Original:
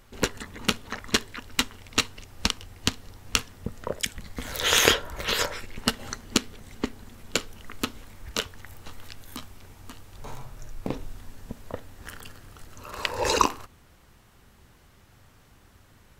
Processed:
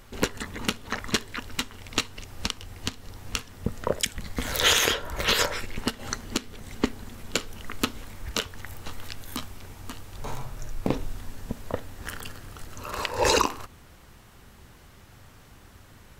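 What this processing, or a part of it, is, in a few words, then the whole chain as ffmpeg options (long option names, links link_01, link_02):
stacked limiters: -af "alimiter=limit=-7dB:level=0:latency=1:release=344,alimiter=limit=-13dB:level=0:latency=1:release=190,volume=5dB"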